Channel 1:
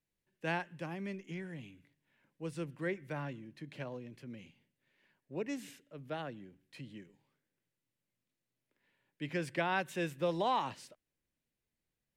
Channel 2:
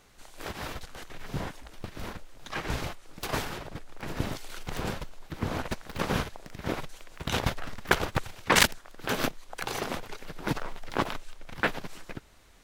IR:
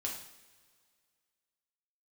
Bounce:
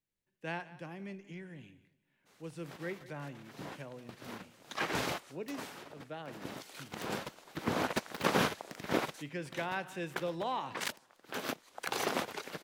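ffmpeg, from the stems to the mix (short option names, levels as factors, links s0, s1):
-filter_complex "[0:a]volume=0.562,asplit=4[s0][s1][s2][s3];[s1]volume=0.2[s4];[s2]volume=0.15[s5];[1:a]highpass=200,agate=range=0.0224:threshold=0.00158:ratio=3:detection=peak,adelay=2250,volume=1.19[s6];[s3]apad=whole_len=656373[s7];[s6][s7]sidechaincompress=threshold=0.00251:ratio=16:attack=10:release=1140[s8];[2:a]atrim=start_sample=2205[s9];[s4][s9]afir=irnorm=-1:irlink=0[s10];[s5]aecho=0:1:179|358|537|716:1|0.24|0.0576|0.0138[s11];[s0][s8][s10][s11]amix=inputs=4:normalize=0"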